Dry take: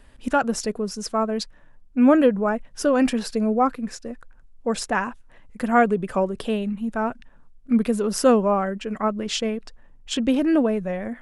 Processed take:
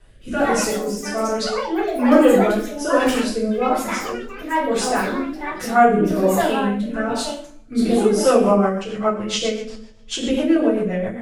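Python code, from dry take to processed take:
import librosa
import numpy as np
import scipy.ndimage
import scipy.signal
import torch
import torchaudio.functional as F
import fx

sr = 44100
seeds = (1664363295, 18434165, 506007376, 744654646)

y = fx.rev_double_slope(x, sr, seeds[0], early_s=0.6, late_s=1.9, knee_db=-26, drr_db=-9.5)
y = fx.echo_pitch(y, sr, ms=193, semitones=5, count=3, db_per_echo=-6.0)
y = fx.rotary_switch(y, sr, hz=1.2, then_hz=7.5, switch_at_s=7.8)
y = y * librosa.db_to_amplitude(-4.5)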